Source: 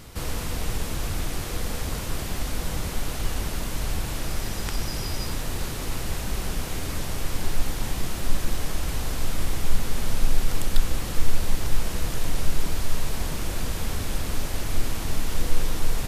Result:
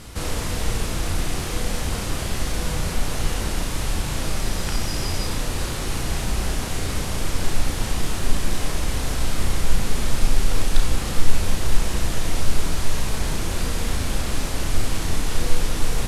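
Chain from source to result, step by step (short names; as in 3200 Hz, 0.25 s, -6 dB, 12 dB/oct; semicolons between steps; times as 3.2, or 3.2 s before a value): CVSD 64 kbps; flutter echo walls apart 5.9 m, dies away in 0.3 s; gain +3.5 dB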